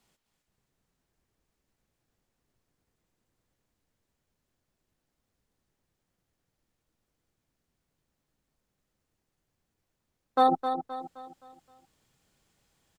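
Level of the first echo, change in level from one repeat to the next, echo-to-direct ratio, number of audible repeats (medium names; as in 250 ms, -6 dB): -8.5 dB, -7.5 dB, -7.5 dB, 4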